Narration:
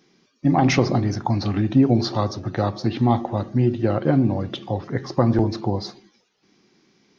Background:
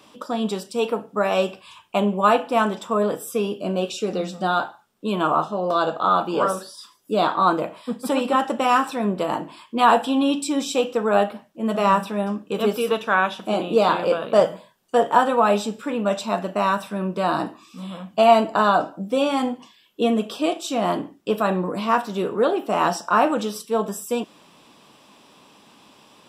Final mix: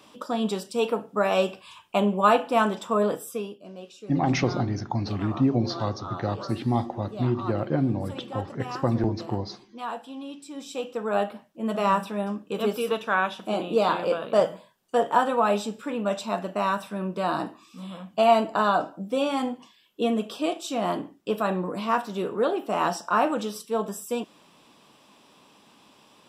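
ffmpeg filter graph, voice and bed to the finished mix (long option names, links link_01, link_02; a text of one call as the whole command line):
ffmpeg -i stem1.wav -i stem2.wav -filter_complex "[0:a]adelay=3650,volume=-6dB[link_01];[1:a]volume=11.5dB,afade=type=out:start_time=3.08:duration=0.51:silence=0.158489,afade=type=in:start_time=10.46:duration=0.96:silence=0.211349[link_02];[link_01][link_02]amix=inputs=2:normalize=0" out.wav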